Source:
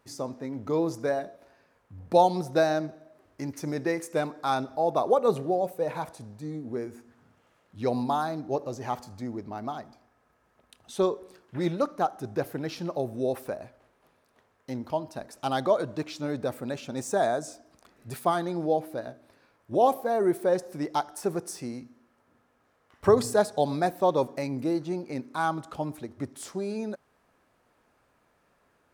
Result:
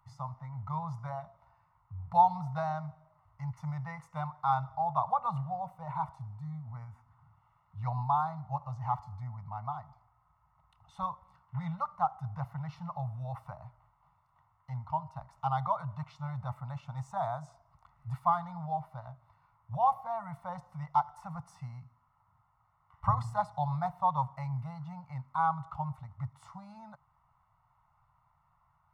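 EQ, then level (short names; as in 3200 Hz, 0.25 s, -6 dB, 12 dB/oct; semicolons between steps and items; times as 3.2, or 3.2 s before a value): polynomial smoothing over 65 samples; Chebyshev band-stop 140–900 Hz, order 3; +4.5 dB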